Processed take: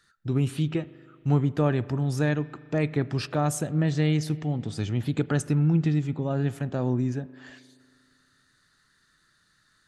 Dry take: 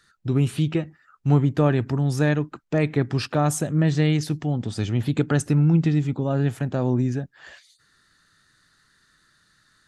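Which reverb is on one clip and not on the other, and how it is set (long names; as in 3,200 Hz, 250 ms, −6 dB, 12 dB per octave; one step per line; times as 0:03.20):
spring reverb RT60 2.2 s, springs 39 ms, chirp 40 ms, DRR 18 dB
level −4 dB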